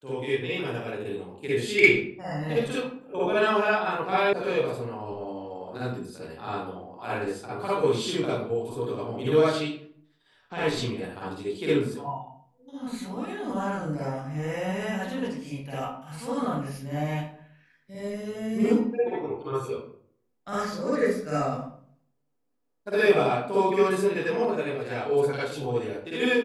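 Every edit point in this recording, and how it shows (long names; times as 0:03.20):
0:04.33: cut off before it has died away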